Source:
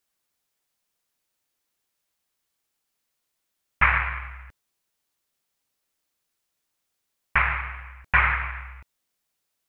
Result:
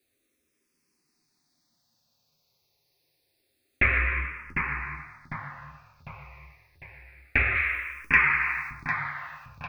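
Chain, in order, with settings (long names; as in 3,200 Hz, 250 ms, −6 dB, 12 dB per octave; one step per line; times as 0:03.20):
0:07.55–0:08.71: spectral tilt +4 dB per octave
downward compressor 3 to 1, threshold −26 dBFS, peak gain reduction 11 dB
flanger 1.6 Hz, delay 7.6 ms, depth 9.9 ms, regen +39%
repeating echo 751 ms, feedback 50%, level −6 dB
convolution reverb RT60 0.30 s, pre-delay 3 ms, DRR 6 dB
frequency shifter mixed with the dry sound −0.27 Hz
level +8 dB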